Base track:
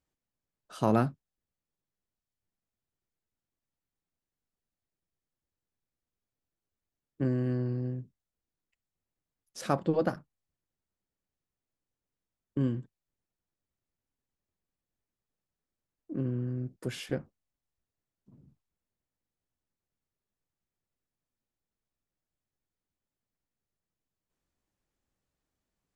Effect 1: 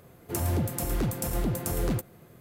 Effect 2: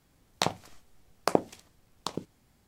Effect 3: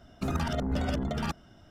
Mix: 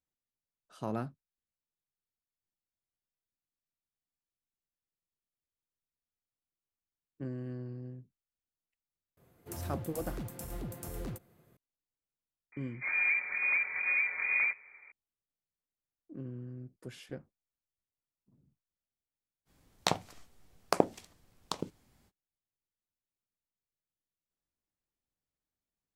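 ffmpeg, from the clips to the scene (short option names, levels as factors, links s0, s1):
-filter_complex "[1:a]asplit=2[s0][s1];[0:a]volume=0.299[s2];[s1]lowpass=f=2100:t=q:w=0.5098,lowpass=f=2100:t=q:w=0.6013,lowpass=f=2100:t=q:w=0.9,lowpass=f=2100:t=q:w=2.563,afreqshift=-2500[s3];[s0]atrim=end=2.4,asetpts=PTS-STARTPTS,volume=0.237,afade=t=in:d=0.004:c=hsin,afade=t=out:st=2.396:d=0.004:c=hsin,adelay=9170[s4];[s3]atrim=end=2.4,asetpts=PTS-STARTPTS,volume=0.708,afade=t=in:d=0.004:c=hsin,afade=t=out:st=2.396:d=0.004:c=hsin,adelay=552132S[s5];[2:a]atrim=end=2.67,asetpts=PTS-STARTPTS,volume=0.794,afade=t=in:d=0.05,afade=t=out:st=2.62:d=0.05,adelay=19450[s6];[s2][s4][s5][s6]amix=inputs=4:normalize=0"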